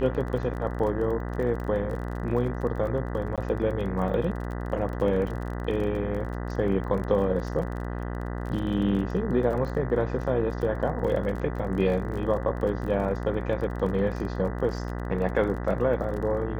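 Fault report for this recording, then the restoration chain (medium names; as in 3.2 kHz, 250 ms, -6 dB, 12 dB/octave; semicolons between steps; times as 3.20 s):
buzz 60 Hz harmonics 33 -32 dBFS
crackle 33 per s -34 dBFS
3.36–3.38 s: dropout 17 ms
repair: de-click; de-hum 60 Hz, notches 33; interpolate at 3.36 s, 17 ms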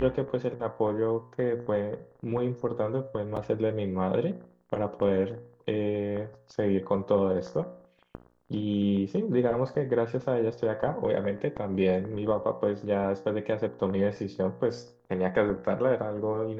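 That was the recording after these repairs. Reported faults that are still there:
nothing left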